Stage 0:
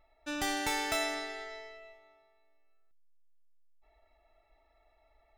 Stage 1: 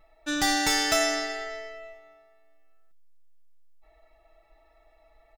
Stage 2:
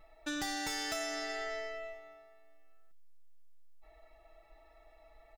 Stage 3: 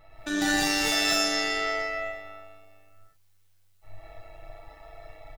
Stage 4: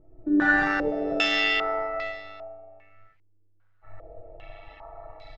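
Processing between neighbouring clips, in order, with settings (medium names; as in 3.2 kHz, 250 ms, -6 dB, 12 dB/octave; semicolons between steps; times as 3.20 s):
dynamic bell 5.4 kHz, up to +7 dB, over -54 dBFS, Q 1.8; comb 6.2 ms, depth 69%; trim +5.5 dB
compression 6:1, threshold -34 dBFS, peak gain reduction 13.5 dB; saturation -28 dBFS, distortion -21 dB
on a send: early reflections 31 ms -6.5 dB, 44 ms -9 dB; on the sum: gated-style reverb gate 230 ms rising, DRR -7 dB; AM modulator 100 Hz, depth 25%; trim +6 dB
step-sequenced low-pass 2.5 Hz 350–4400 Hz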